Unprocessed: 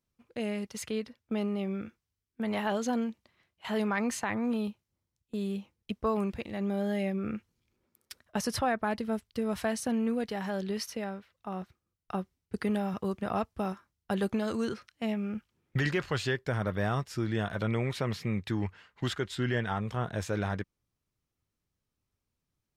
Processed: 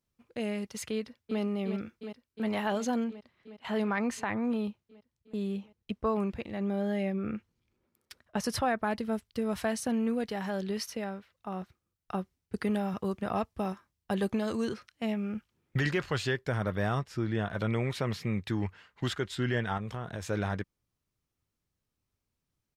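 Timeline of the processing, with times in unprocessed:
0:00.93–0:01.40: delay throw 360 ms, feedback 80%, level −8 dB
0:03.04–0:08.44: high-shelf EQ 5,100 Hz −8 dB
0:13.33–0:14.74: notch filter 1,400 Hz
0:16.99–0:17.55: high-shelf EQ 4,500 Hz −9 dB
0:19.77–0:20.27: downward compressor 5 to 1, threshold −33 dBFS

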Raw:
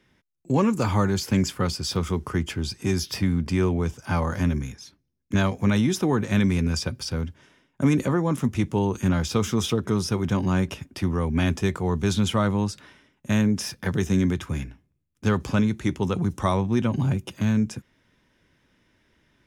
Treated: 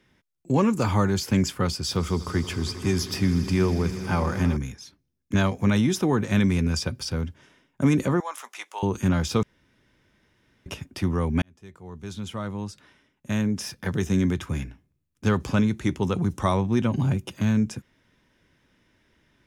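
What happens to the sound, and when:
0:01.77–0:04.57: echo that builds up and dies away 80 ms, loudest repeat 5, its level −18 dB
0:08.20–0:08.83: high-pass filter 740 Hz 24 dB per octave
0:09.43–0:10.66: fill with room tone
0:11.42–0:14.46: fade in

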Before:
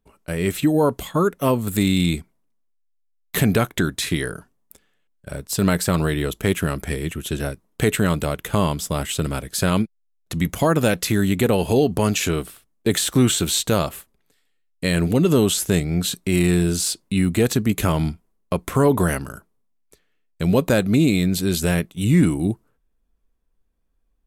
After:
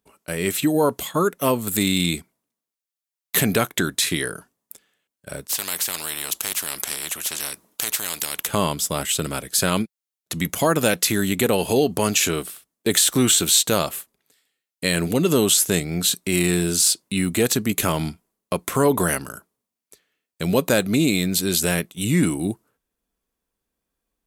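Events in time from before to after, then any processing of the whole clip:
0:05.49–0:08.47: every bin compressed towards the loudest bin 4 to 1
whole clip: high-pass filter 220 Hz 6 dB per octave; high-shelf EQ 3,500 Hz +7 dB

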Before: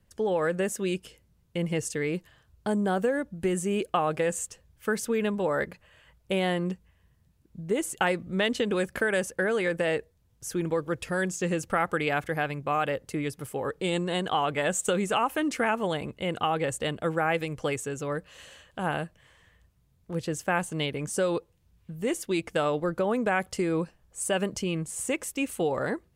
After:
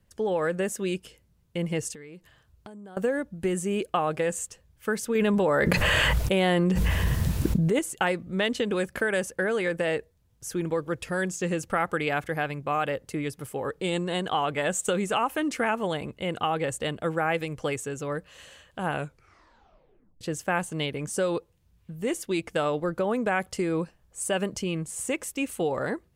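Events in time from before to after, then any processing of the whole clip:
0:01.93–0:02.97: downward compressor 10 to 1, threshold −41 dBFS
0:05.15–0:07.79: envelope flattener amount 100%
0:18.91: tape stop 1.30 s

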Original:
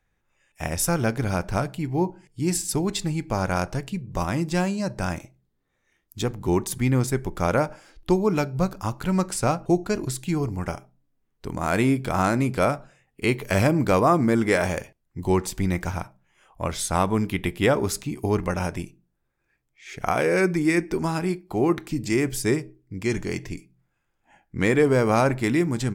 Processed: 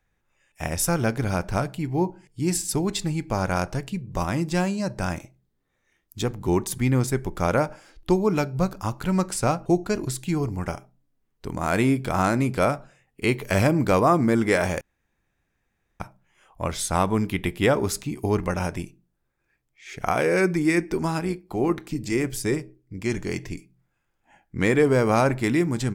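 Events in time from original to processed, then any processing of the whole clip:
0:14.81–0:16.00: fill with room tone
0:21.20–0:23.25: amplitude modulation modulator 120 Hz, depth 25%

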